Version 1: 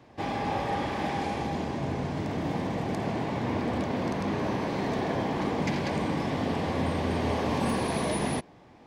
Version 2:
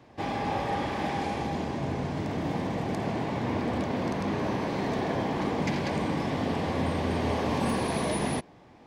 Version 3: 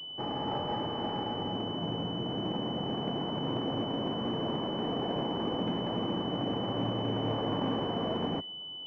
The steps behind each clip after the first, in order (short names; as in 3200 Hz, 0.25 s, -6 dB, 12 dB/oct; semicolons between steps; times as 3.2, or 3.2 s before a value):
nothing audible
sample sorter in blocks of 8 samples; frequency shift +29 Hz; pulse-width modulation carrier 3000 Hz; gain -3.5 dB